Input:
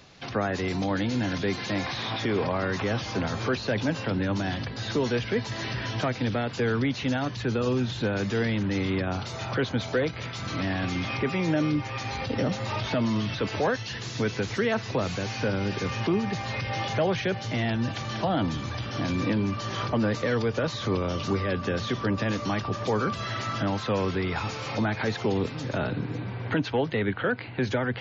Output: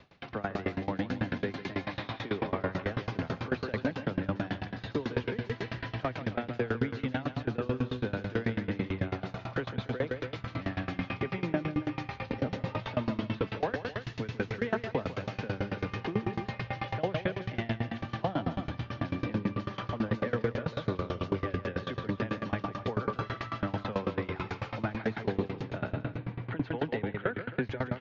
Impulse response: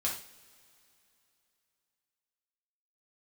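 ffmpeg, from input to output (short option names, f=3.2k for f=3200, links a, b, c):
-af "lowpass=3k,aecho=1:1:148.7|282.8:0.501|0.355,aeval=exprs='val(0)*pow(10,-23*if(lt(mod(9.1*n/s,1),2*abs(9.1)/1000),1-mod(9.1*n/s,1)/(2*abs(9.1)/1000),(mod(9.1*n/s,1)-2*abs(9.1)/1000)/(1-2*abs(9.1)/1000))/20)':c=same"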